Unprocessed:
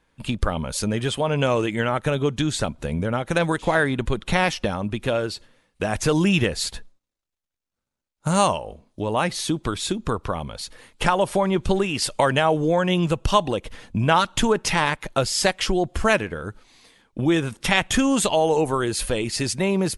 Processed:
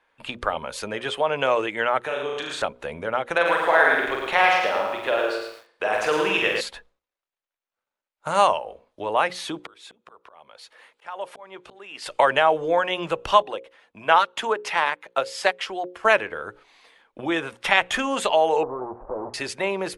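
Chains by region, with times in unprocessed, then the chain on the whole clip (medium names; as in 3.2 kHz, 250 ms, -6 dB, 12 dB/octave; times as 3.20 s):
2.01–2.62 s: high-pass 250 Hz 6 dB/octave + flutter echo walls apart 6.3 m, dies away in 0.74 s + compression 2.5:1, threshold -24 dBFS
3.35–6.61 s: tone controls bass -10 dB, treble -3 dB + flutter echo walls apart 7.9 m, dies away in 0.64 s + bit-crushed delay 110 ms, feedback 35%, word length 7-bit, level -4 dB
9.60–12.06 s: high-pass 320 Hz 6 dB/octave + slow attack 755 ms
13.42–16.05 s: high-pass 230 Hz 6 dB/octave + upward expansion, over -39 dBFS
18.63–19.34 s: square wave that keeps the level + compression, threshold -23 dBFS + steep low-pass 1 kHz
whole clip: three-band isolator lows -20 dB, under 420 Hz, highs -13 dB, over 3.3 kHz; hum notches 60/120/180/240/300/360/420/480/540 Hz; trim +3 dB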